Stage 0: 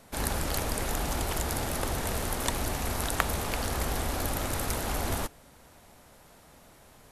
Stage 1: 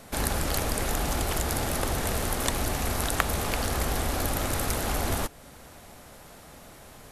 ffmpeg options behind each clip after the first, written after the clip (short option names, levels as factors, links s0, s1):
-filter_complex "[0:a]bandreject=f=940:w=22,asplit=2[s0][s1];[s1]acompressor=threshold=0.0126:ratio=6,volume=1.26[s2];[s0][s2]amix=inputs=2:normalize=0"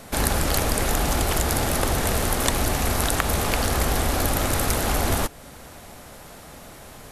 -af "alimiter=level_in=2.11:limit=0.891:release=50:level=0:latency=1,volume=0.891"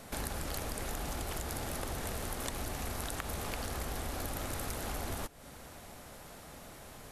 -af "acompressor=threshold=0.0282:ratio=2.5,volume=0.422"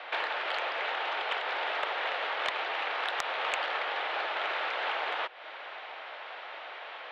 -af "highpass=f=400:t=q:w=0.5412,highpass=f=400:t=q:w=1.307,lowpass=f=3300:t=q:w=0.5176,lowpass=f=3300:t=q:w=0.7071,lowpass=f=3300:t=q:w=1.932,afreqshift=59,tiltshelf=f=810:g=-6.5,aeval=exprs='0.141*sin(PI/2*2.24*val(0)/0.141)':c=same,volume=0.841"